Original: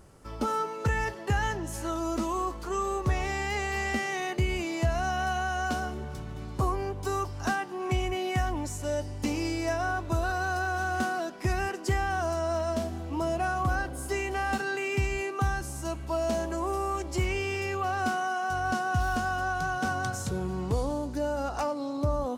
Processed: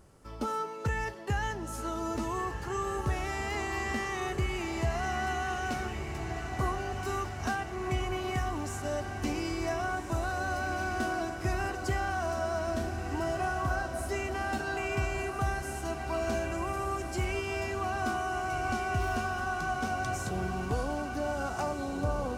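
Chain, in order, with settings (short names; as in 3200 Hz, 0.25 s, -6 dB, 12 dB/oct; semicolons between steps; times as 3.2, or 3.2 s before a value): diffused feedback echo 1.478 s, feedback 62%, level -6.5 dB; gain -4 dB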